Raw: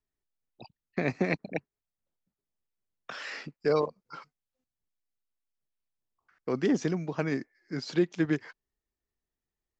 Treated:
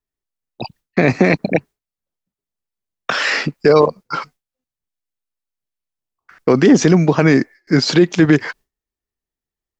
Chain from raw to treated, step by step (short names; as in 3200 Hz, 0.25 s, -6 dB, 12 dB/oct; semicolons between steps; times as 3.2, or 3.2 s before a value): gate with hold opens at -57 dBFS; maximiser +22.5 dB; gain -1 dB